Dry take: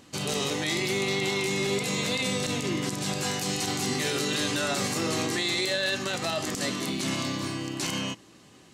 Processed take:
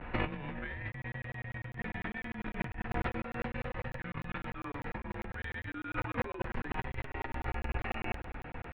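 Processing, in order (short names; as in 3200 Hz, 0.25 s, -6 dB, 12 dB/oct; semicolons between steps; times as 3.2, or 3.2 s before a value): vibrato 0.33 Hz 32 cents; mistuned SSB -270 Hz 250–2500 Hz; limiter -24.5 dBFS, peak gain reduction 5.5 dB; negative-ratio compressor -40 dBFS, ratio -0.5; crackling interface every 0.10 s, samples 1024, zero, from 0.92; gain +5 dB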